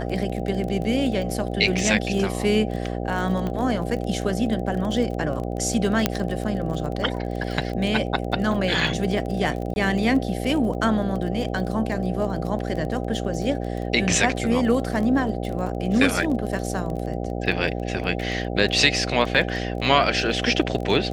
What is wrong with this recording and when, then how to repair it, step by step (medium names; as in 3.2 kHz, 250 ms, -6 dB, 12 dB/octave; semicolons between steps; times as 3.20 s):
buzz 60 Hz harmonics 13 -28 dBFS
crackle 24 per s -28 dBFS
3.47 s: pop -17 dBFS
6.06 s: pop -3 dBFS
9.74–9.76 s: dropout 21 ms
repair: de-click; de-hum 60 Hz, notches 13; interpolate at 9.74 s, 21 ms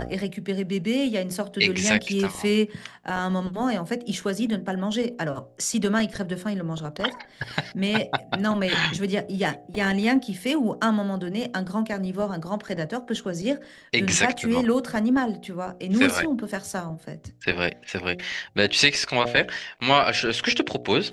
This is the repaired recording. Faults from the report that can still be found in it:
nothing left